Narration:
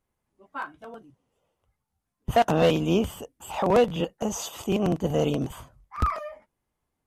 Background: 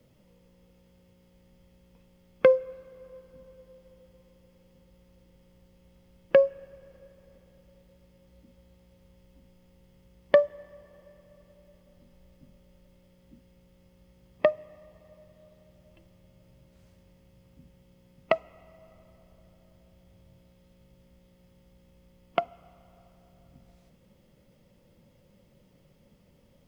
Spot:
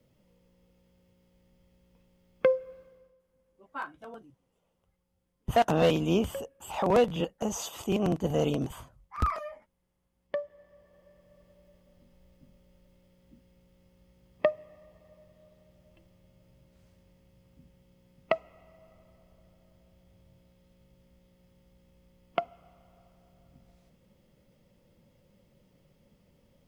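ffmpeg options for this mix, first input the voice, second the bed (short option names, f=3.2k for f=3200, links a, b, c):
-filter_complex "[0:a]adelay=3200,volume=-3dB[a];[1:a]volume=12dB,afade=t=out:st=2.81:d=0.35:silence=0.177828,afade=t=in:st=10.13:d=1.31:silence=0.141254[b];[a][b]amix=inputs=2:normalize=0"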